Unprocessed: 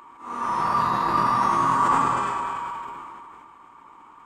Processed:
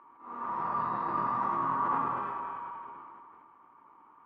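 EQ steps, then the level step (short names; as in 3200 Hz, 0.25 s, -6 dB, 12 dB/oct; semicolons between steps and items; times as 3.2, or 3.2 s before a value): HPF 140 Hz 6 dB/oct; LPF 1600 Hz 12 dB/oct; -8.5 dB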